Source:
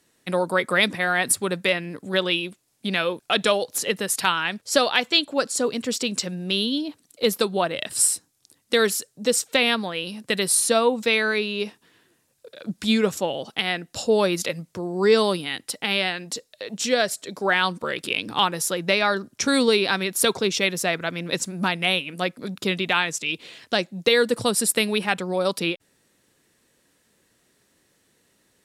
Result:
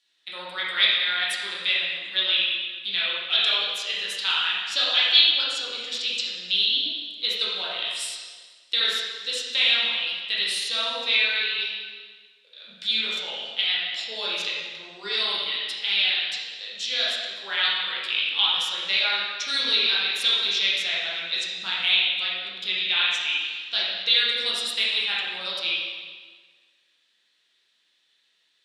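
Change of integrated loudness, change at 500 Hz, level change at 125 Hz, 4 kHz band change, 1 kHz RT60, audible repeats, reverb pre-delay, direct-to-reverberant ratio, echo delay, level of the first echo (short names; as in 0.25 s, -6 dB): 0.0 dB, -17.5 dB, under -20 dB, +6.0 dB, 1.5 s, none, 7 ms, -8.0 dB, none, none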